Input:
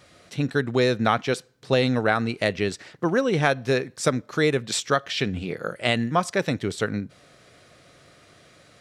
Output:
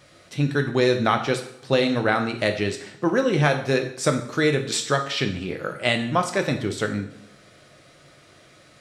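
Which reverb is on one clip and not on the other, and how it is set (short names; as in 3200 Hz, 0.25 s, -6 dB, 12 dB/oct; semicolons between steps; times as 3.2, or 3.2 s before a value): two-slope reverb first 0.59 s, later 1.6 s, from -18 dB, DRR 4.5 dB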